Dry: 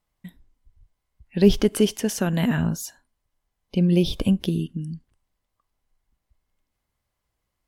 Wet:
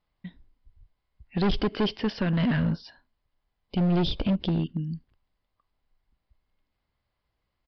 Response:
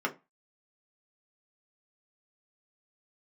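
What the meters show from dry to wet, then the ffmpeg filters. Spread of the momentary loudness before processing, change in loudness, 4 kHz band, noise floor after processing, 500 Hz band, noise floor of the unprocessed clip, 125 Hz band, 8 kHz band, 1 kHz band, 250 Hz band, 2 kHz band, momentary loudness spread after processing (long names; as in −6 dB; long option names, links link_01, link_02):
15 LU, −4.5 dB, −2.0 dB, −81 dBFS, −7.5 dB, −80 dBFS, −3.0 dB, below −25 dB, +2.5 dB, −4.5 dB, −1.5 dB, 13 LU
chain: -af "volume=20.5dB,asoftclip=hard,volume=-20.5dB,aresample=11025,aresample=44100"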